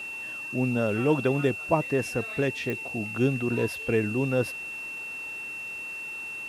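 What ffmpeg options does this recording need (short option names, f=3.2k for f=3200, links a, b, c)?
-af "adeclick=t=4,bandreject=f=2.7k:w=30,afwtdn=0.0022"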